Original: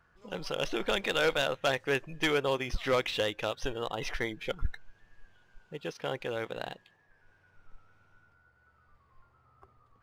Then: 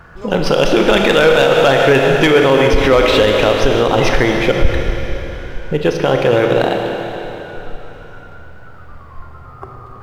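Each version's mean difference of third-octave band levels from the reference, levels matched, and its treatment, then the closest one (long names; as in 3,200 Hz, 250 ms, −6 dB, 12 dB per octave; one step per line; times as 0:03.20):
7.0 dB: tilt shelving filter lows +4 dB, about 1,500 Hz
in parallel at +2 dB: downward compressor, threshold −42 dBFS, peak gain reduction 20 dB
on the sum: four-comb reverb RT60 3.5 s, combs from 26 ms, DRR 2.5 dB
boost into a limiter +18 dB
level −1 dB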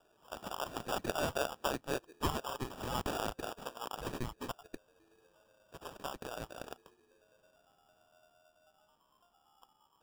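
9.0 dB: running median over 5 samples
high-pass filter 1,500 Hz 12 dB per octave
in parallel at −3 dB: downward compressor, threshold −44 dBFS, peak gain reduction 16.5 dB
on the sum: decimation without filtering 21×
level −2 dB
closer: first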